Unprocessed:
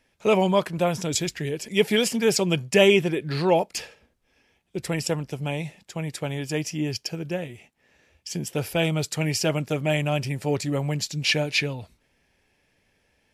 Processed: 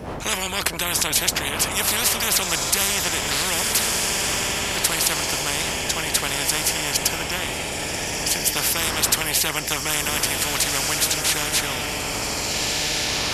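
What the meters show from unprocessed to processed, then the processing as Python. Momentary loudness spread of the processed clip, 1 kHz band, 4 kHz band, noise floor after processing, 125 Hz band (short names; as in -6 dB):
5 LU, +4.5 dB, +8.5 dB, -28 dBFS, -5.5 dB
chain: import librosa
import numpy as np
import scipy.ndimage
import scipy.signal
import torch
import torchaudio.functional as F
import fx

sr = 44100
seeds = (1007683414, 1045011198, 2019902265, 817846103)

p1 = fx.dmg_wind(x, sr, seeds[0], corner_hz=98.0, level_db=-23.0)
p2 = scipy.signal.sosfilt(scipy.signal.butter(2, 47.0, 'highpass', fs=sr, output='sos'), p1)
p3 = fx.high_shelf(p2, sr, hz=7100.0, db=7.5)
p4 = p3 + fx.echo_diffused(p3, sr, ms=1655, feedback_pct=44, wet_db=-11.0, dry=0)
y = fx.spectral_comp(p4, sr, ratio=10.0)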